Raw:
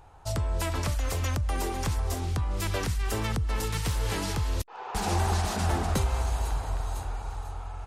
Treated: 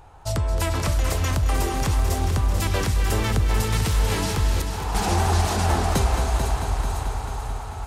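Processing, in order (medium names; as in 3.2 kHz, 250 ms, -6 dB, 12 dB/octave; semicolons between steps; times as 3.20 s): multi-head delay 220 ms, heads first and second, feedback 65%, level -11 dB; trim +5 dB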